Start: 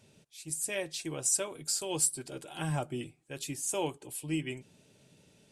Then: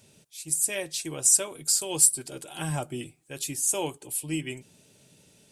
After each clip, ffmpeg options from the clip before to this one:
ffmpeg -i in.wav -af "highshelf=frequency=6000:gain=10.5,volume=2dB" out.wav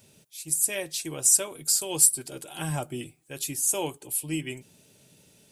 ffmpeg -i in.wav -af "aexciter=amount=2:drive=1.1:freq=11000" out.wav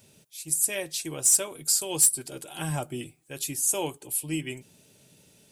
ffmpeg -i in.wav -af "asoftclip=type=hard:threshold=-12.5dB" out.wav

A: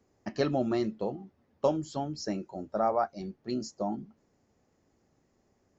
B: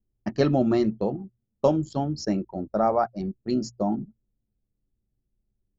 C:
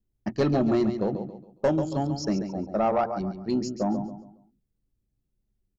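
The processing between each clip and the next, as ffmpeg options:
ffmpeg -i in.wav -af "anlmdn=0.0398,lowshelf=frequency=300:gain=8,bandreject=frequency=60:width_type=h:width=6,bandreject=frequency=120:width_type=h:width=6,volume=3.5dB" out.wav
ffmpeg -i in.wav -af "aecho=1:1:138|276|414|552:0.335|0.111|0.0365|0.012,asoftclip=type=tanh:threshold=-15dB" out.wav

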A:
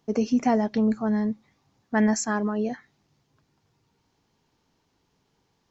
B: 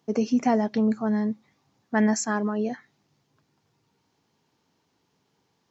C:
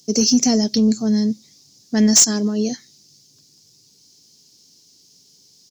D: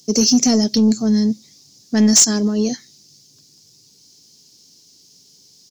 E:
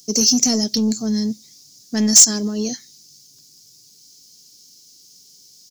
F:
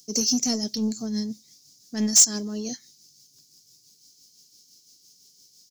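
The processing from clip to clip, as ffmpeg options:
ffmpeg -i in.wav -af "highpass=110" out.wav
ffmpeg -i in.wav -filter_complex "[0:a]firequalizer=gain_entry='entry(100,0);entry(840,-26);entry(1300,-27);entry(5000,13)':delay=0.05:min_phase=1,asplit=2[link_01][link_02];[link_02]highpass=frequency=720:poles=1,volume=20dB,asoftclip=type=tanh:threshold=-5dB[link_03];[link_01][link_03]amix=inputs=2:normalize=0,lowpass=frequency=3100:poles=1,volume=-6dB,volume=7dB" out.wav
ffmpeg -i in.wav -af "asoftclip=type=tanh:threshold=-7dB,volume=2.5dB" out.wav
ffmpeg -i in.wav -af "crystalizer=i=2:c=0,volume=-5dB" out.wav
ffmpeg -i in.wav -af "tremolo=f=5.9:d=0.44,volume=-5.5dB" out.wav

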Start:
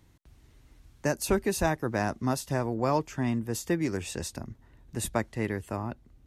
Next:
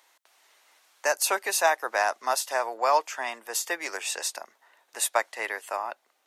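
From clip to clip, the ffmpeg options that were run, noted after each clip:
ffmpeg -i in.wav -af "highpass=frequency=640:width=0.5412,highpass=frequency=640:width=1.3066,volume=8dB" out.wav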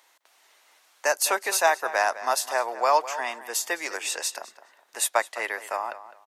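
ffmpeg -i in.wav -filter_complex "[0:a]asplit=2[link_01][link_02];[link_02]adelay=207,lowpass=frequency=3600:poles=1,volume=-14dB,asplit=2[link_03][link_04];[link_04]adelay=207,lowpass=frequency=3600:poles=1,volume=0.25,asplit=2[link_05][link_06];[link_06]adelay=207,lowpass=frequency=3600:poles=1,volume=0.25[link_07];[link_01][link_03][link_05][link_07]amix=inputs=4:normalize=0,volume=1.5dB" out.wav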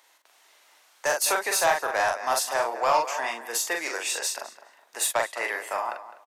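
ffmpeg -i in.wav -filter_complex "[0:a]asoftclip=type=tanh:threshold=-15.5dB,asplit=2[link_01][link_02];[link_02]adelay=43,volume=-4dB[link_03];[link_01][link_03]amix=inputs=2:normalize=0" out.wav

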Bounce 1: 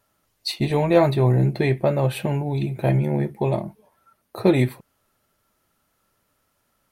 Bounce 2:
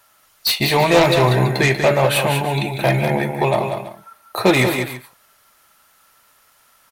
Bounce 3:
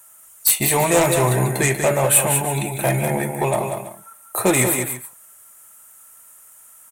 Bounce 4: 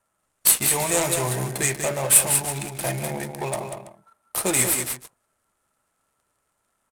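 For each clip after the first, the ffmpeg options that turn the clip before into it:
ffmpeg -i in.wav -filter_complex "[0:a]acrossover=split=720[link_01][link_02];[link_02]aeval=exprs='0.224*sin(PI/2*3.55*val(0)/0.224)':channel_layout=same[link_03];[link_01][link_03]amix=inputs=2:normalize=0,aecho=1:1:42|155|190|330:0.133|0.168|0.447|0.158" out.wav
ffmpeg -i in.wav -filter_complex "[0:a]highshelf=frequency=6200:width_type=q:width=3:gain=11,asplit=2[link_01][link_02];[link_02]asoftclip=type=tanh:threshold=-15dB,volume=-9.5dB[link_03];[link_01][link_03]amix=inputs=2:normalize=0,volume=-4.5dB" out.wav
ffmpeg -i in.wav -af "aemphasis=mode=production:type=75kf,adynamicsmooth=sensitivity=3:basefreq=1100,volume=-8.5dB" out.wav

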